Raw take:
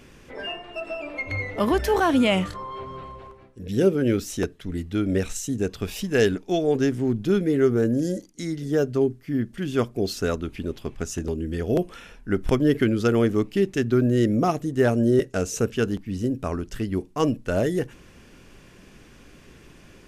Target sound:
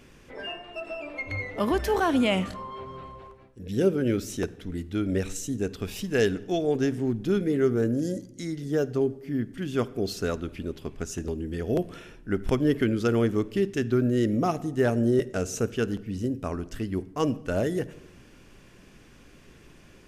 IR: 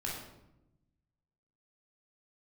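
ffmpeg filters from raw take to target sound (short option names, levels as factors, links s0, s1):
-filter_complex "[0:a]asplit=2[s0][s1];[1:a]atrim=start_sample=2205,adelay=53[s2];[s1][s2]afir=irnorm=-1:irlink=0,volume=0.0891[s3];[s0][s3]amix=inputs=2:normalize=0,volume=0.668"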